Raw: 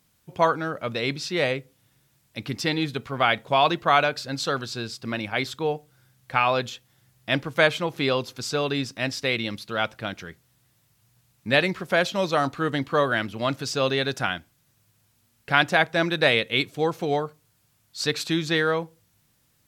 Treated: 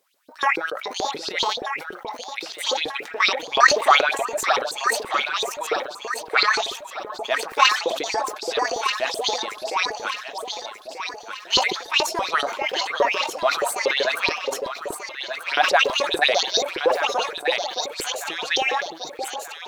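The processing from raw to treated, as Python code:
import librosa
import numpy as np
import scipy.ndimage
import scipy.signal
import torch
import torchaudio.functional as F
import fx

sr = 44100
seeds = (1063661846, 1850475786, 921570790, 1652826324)

p1 = fx.pitch_trill(x, sr, semitones=9.0, every_ms=277)
p2 = fx.filter_lfo_highpass(p1, sr, shape='saw_up', hz=7.0, low_hz=370.0, high_hz=4700.0, q=6.1)
p3 = p2 + fx.echo_alternate(p2, sr, ms=618, hz=840.0, feedback_pct=67, wet_db=-4, dry=0)
p4 = fx.sustainer(p3, sr, db_per_s=96.0)
y = p4 * librosa.db_to_amplitude(-4.0)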